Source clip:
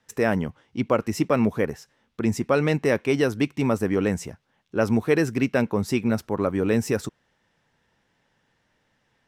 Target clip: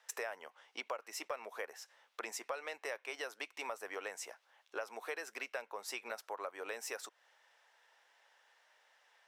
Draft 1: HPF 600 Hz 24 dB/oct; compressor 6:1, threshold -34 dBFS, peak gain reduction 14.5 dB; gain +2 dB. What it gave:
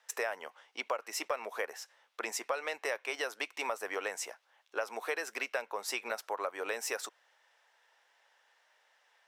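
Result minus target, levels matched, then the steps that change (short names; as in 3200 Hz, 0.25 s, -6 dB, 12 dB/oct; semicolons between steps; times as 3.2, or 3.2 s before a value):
compressor: peak gain reduction -6.5 dB
change: compressor 6:1, threshold -42 dBFS, peak gain reduction 21 dB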